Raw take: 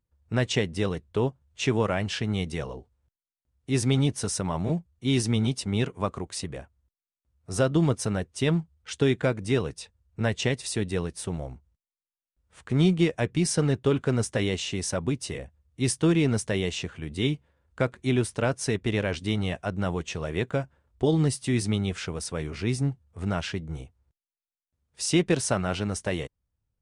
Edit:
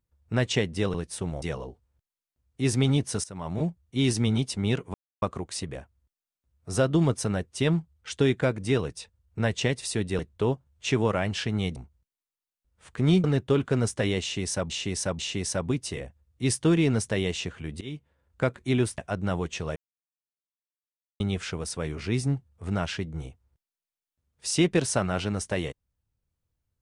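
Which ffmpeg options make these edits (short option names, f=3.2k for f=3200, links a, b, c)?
-filter_complex "[0:a]asplit=14[a][b][c][d][e][f][g][h][i][j][k][l][m][n];[a]atrim=end=0.942[o];[b]atrim=start=10.998:end=11.482[p];[c]atrim=start=2.508:end=4.33,asetpts=PTS-STARTPTS,afade=t=out:st=1.818:d=0.004:c=hsin:silence=0.105925[q];[d]atrim=start=4.33:end=6.03,asetpts=PTS-STARTPTS,afade=t=in:d=0.43:silence=0.105925,afade=t=out:st=1.696:d=0.004:c=hsin,apad=pad_dur=0.28[r];[e]atrim=start=6.03:end=11.002,asetpts=PTS-STARTPTS,afade=t=in:d=0.004:c=hsin[s];[f]atrim=start=0.938:end=2.512[t];[g]atrim=start=11.478:end=12.962[u];[h]atrim=start=13.598:end=15.062[v];[i]atrim=start=14.568:end=15.062[w];[j]atrim=start=14.568:end=17.19,asetpts=PTS-STARTPTS,afade=t=out:st=2.618:d=0.004:c=hsin:silence=0.0841395[x];[k]atrim=start=17.19:end=18.362,asetpts=PTS-STARTPTS,afade=t=in:d=0.65:c=qsin:silence=0.0841395[y];[l]atrim=start=19.528:end=20.31,asetpts=PTS-STARTPTS,afade=t=out:st=0.778:d=0.004:c=hsin[z];[m]atrim=start=20.31:end=21.75,asetpts=PTS-STARTPTS,volume=0[aa];[n]atrim=start=21.75,asetpts=PTS-STARTPTS,afade=t=in:d=0.004:c=hsin[ab];[o][p]acrossfade=d=0.004:c1=hsin:c2=hsin[ac];[q][r][s]concat=n=3:v=0:a=1[ad];[ac][ad]acrossfade=d=0.004:c1=hsin:c2=hsin[ae];[ae][t]acrossfade=d=0.004:c1=hsin:c2=hsin[af];[af][u]acrossfade=d=0.004:c1=hsin:c2=hsin[ag];[ag][v]acrossfade=d=0.004:c1=hsin:c2=hsin[ah];[ah][w]acrossfade=d=0.004:c1=hsin:c2=hsin[ai];[x][y]concat=n=2:v=0:a=1[aj];[ai][aj]acrossfade=d=0.004:c1=hsin:c2=hsin[ak];[z][aa][ab]concat=n=3:v=0:a=1[al];[ak][al]acrossfade=d=0.004:c1=hsin:c2=hsin"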